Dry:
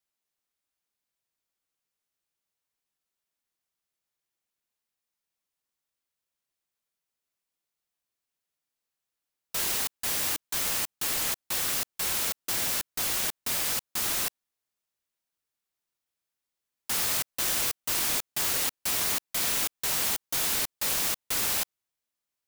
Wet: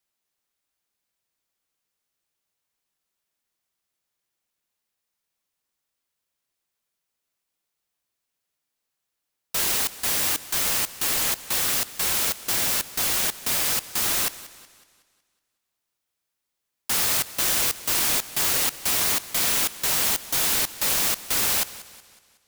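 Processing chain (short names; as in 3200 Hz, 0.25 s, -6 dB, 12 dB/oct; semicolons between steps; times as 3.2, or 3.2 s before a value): warbling echo 0.185 s, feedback 47%, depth 51 cents, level -17 dB; gain +5 dB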